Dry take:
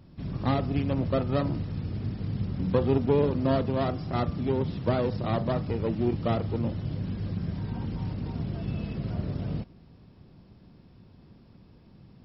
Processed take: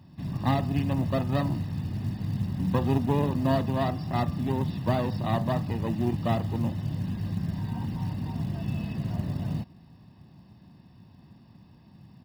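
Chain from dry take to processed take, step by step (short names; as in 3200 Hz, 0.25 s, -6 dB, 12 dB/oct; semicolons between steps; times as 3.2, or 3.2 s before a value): HPF 96 Hz 12 dB/oct; comb 1.1 ms, depth 59%; short-mantissa float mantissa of 4-bit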